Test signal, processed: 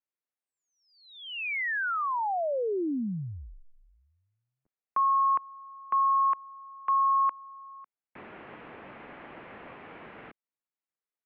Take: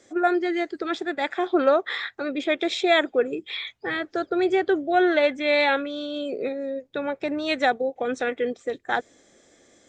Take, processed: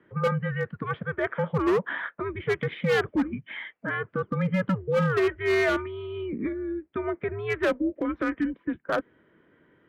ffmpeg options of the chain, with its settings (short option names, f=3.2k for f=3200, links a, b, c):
-af "highpass=f=390:t=q:w=0.5412,highpass=f=390:t=q:w=1.307,lowpass=f=2.8k:t=q:w=0.5176,lowpass=f=2.8k:t=q:w=0.7071,lowpass=f=2.8k:t=q:w=1.932,afreqshift=-200,aemphasis=mode=reproduction:type=50kf,asoftclip=type=hard:threshold=-19dB"